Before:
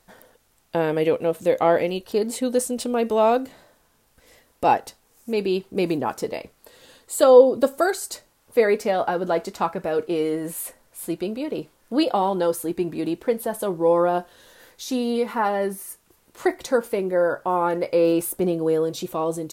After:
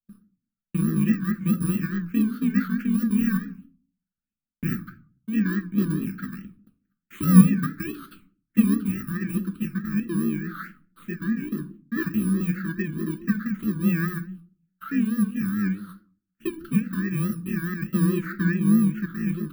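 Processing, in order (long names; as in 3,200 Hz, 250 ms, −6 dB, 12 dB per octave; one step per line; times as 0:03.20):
samples in bit-reversed order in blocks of 64 samples
drawn EQ curve 140 Hz 0 dB, 200 Hz +13 dB, 870 Hz −28 dB, 1,300 Hz +13 dB, 5,900 Hz −25 dB, 14,000 Hz −12 dB
noise gate −48 dBFS, range −34 dB
all-pass phaser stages 6, 1.4 Hz, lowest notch 660–2,300 Hz
rectangular room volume 270 cubic metres, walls furnished, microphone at 0.84 metres
pitch vibrato 4.7 Hz 99 cents
level −3 dB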